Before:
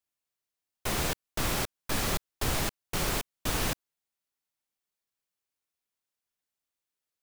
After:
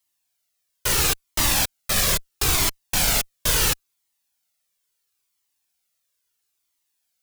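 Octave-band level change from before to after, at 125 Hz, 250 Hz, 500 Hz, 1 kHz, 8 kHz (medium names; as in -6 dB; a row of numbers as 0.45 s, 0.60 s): +5.0 dB, +2.0 dB, +3.5 dB, +5.5 dB, +13.0 dB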